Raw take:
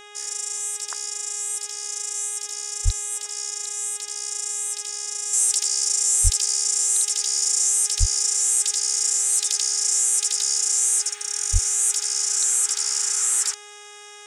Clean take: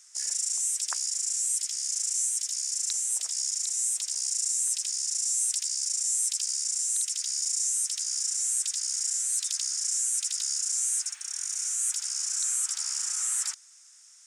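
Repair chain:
hum removal 414.2 Hz, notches 9
high-pass at the plosives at 0:02.84/0:06.23/0:07.99/0:11.52
level correction −7.5 dB, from 0:05.33

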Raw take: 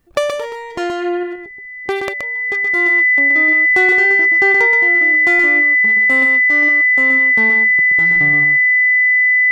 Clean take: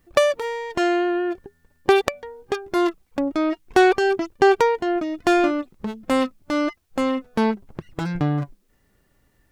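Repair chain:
notch filter 2,000 Hz, Q 30
echo removal 125 ms −5 dB
level correction +4.5 dB, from 0:01.23

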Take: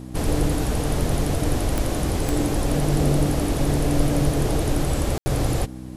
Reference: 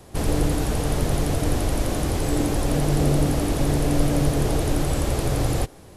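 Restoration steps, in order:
click removal
hum removal 63.2 Hz, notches 5
ambience match 0:05.18–0:05.26

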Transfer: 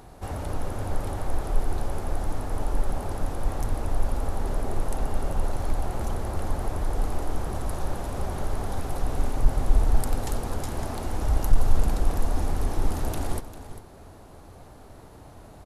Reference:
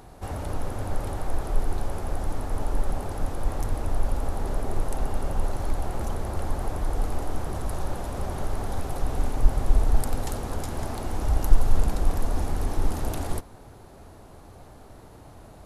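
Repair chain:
clipped peaks rebuilt −7 dBFS
echo removal 398 ms −13 dB

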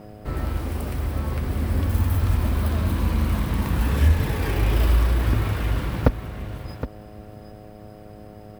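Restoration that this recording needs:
hum removal 105.4 Hz, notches 7
echo removal 767 ms −11.5 dB

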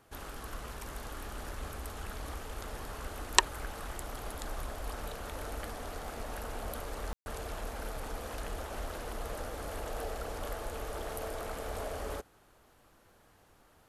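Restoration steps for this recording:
click removal
ambience match 0:07.13–0:07.26

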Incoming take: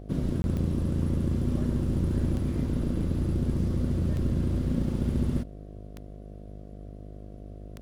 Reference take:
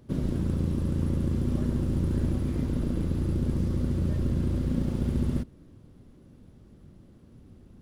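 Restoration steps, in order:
click removal
hum removal 50.8 Hz, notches 14
repair the gap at 0:00.42, 21 ms

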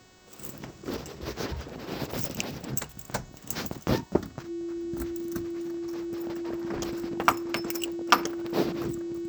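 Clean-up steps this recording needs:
hum removal 370 Hz, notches 21
notch filter 340 Hz, Q 30

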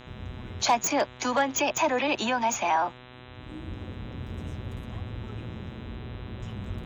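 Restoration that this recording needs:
hum removal 125 Hz, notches 32

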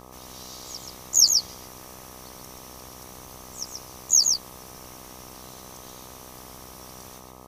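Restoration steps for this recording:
hum removal 63.4 Hz, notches 20
echo removal 130 ms −4.5 dB

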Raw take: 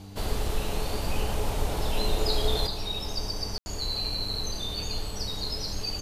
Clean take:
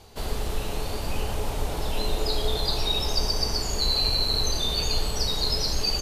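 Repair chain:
hum removal 98.4 Hz, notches 3
ambience match 0:03.58–0:03.66
level correction +7 dB, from 0:02.67

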